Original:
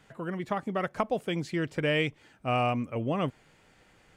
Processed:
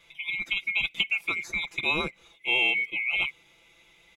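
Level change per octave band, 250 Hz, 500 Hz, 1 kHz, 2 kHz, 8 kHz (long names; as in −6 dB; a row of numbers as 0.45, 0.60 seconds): −11.0, −10.0, −7.5, +10.5, +4.0 decibels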